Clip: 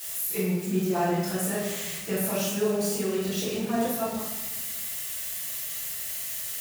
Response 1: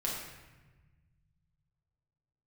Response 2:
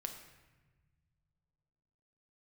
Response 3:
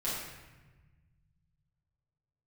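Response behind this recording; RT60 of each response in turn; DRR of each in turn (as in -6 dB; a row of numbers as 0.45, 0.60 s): 3; 1.2, 1.3, 1.2 s; -4.5, 4.5, -10.0 dB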